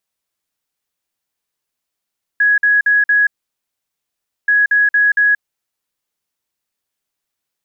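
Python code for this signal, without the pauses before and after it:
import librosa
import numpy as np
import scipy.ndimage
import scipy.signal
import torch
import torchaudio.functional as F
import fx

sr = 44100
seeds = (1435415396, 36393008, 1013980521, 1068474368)

y = fx.beep_pattern(sr, wave='sine', hz=1670.0, on_s=0.18, off_s=0.05, beeps=4, pause_s=1.21, groups=2, level_db=-9.0)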